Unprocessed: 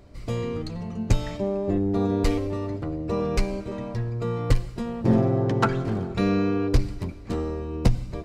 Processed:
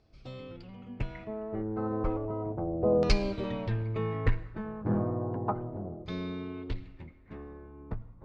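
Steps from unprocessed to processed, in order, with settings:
source passing by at 0:03.32, 32 m/s, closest 21 metres
auto-filter low-pass saw down 0.33 Hz 590–4,800 Hz
level −1.5 dB

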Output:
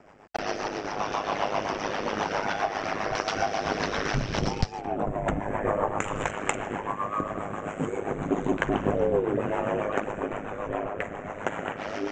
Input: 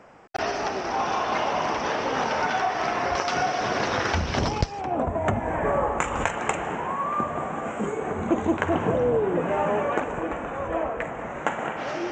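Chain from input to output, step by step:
rotating-speaker cabinet horn 7.5 Hz
ring modulation 51 Hz
level +2.5 dB

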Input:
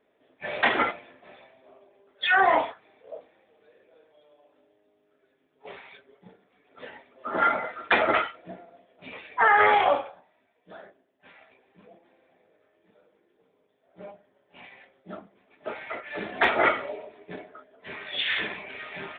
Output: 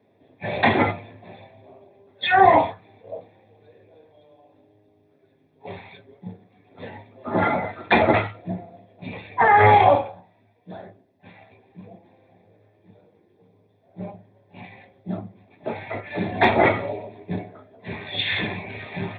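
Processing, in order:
parametric band 100 Hz +14 dB 0.32 octaves
convolution reverb RT60 0.20 s, pre-delay 3 ms, DRR 10.5 dB

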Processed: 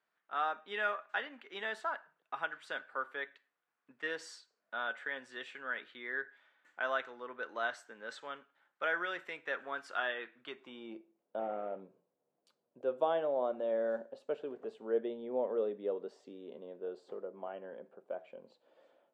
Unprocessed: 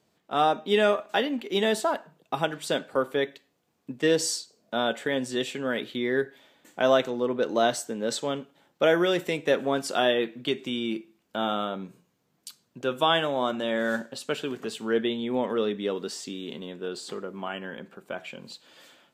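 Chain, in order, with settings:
0:11.39–0:11.80: variable-slope delta modulation 16 kbit/s
band-pass filter sweep 1,500 Hz → 560 Hz, 0:10.37–0:11.12
level −3 dB

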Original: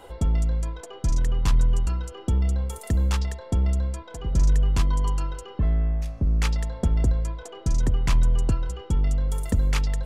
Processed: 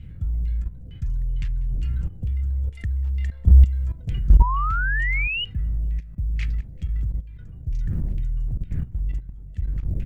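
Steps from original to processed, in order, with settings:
source passing by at 0:03.71, 8 m/s, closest 5.6 metres
wind on the microphone 220 Hz −40 dBFS
auto-filter low-pass saw down 2.2 Hz 520–2,700 Hz
in parallel at 0 dB: downward compressor 16 to 1, threshold −32 dBFS, peak gain reduction 14.5 dB
on the sum: low-shelf EQ 310 Hz +3 dB
on a send at −19 dB: convolution reverb RT60 0.50 s, pre-delay 5 ms
on the sum: floating-point word with a short mantissa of 8 bits
drawn EQ curve 110 Hz 0 dB, 240 Hz −16 dB, 1,000 Hz −28 dB, 1,800 Hz −8 dB, 7,700 Hz +7 dB
repeating echo 192 ms, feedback 39%, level −20.5 dB
output level in coarse steps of 15 dB
sound drawn into the spectrogram rise, 0:04.40–0:05.45, 930–3,000 Hz −33 dBFS
level +7 dB

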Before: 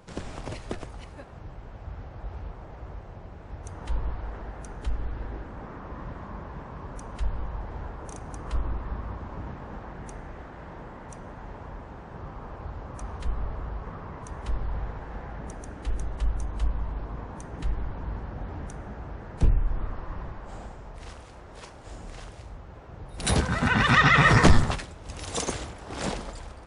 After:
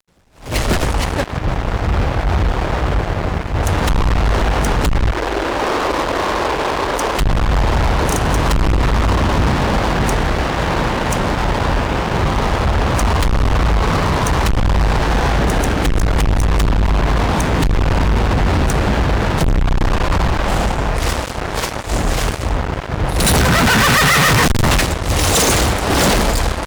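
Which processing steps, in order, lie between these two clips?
fuzz pedal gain 44 dB, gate −45 dBFS
0:05.11–0:07.18: low shelf with overshoot 260 Hz −11.5 dB, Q 1.5
level that may rise only so fast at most 160 dB per second
level +2 dB

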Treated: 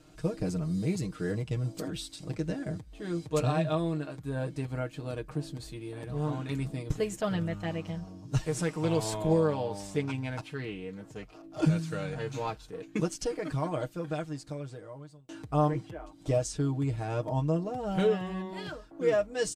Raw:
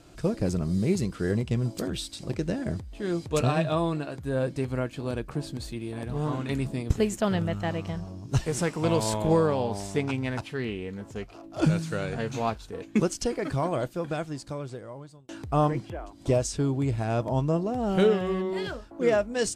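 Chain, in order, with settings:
comb filter 6.5 ms, depth 72%
level −6.5 dB

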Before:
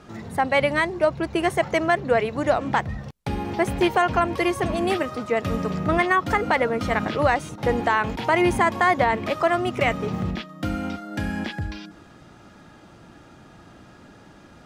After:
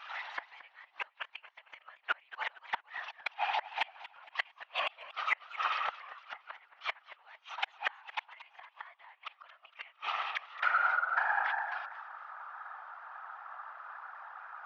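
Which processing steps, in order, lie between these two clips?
Chebyshev band-pass filter 820–6,000 Hz, order 4
low-pass filter sweep 2,900 Hz → 1,300 Hz, 0:10.30–0:10.99
gate with flip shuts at −20 dBFS, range −38 dB
in parallel at −8.5 dB: soft clipping −24 dBFS, distortion −18 dB
on the sum: random phases in short frames
feedback echo with a swinging delay time 229 ms, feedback 42%, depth 161 cents, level −16 dB

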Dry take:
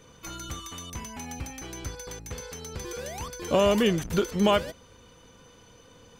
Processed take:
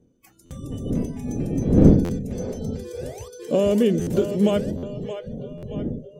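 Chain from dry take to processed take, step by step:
wind on the microphone 220 Hz −27 dBFS
octave-band graphic EQ 125/250/500/1,000/2,000/4,000/8,000 Hz +4/+7/+8/−9/−3/−4/+5 dB
on a send: echo with a time of its own for lows and highs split 400 Hz, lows 132 ms, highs 624 ms, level −10 dB
on the sum: noise reduction from a noise print of the clip's start 22 dB
buffer that repeats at 0:00.45/0:02.04/0:04.01/0:04.77/0:05.57, samples 512, times 4
level −3 dB

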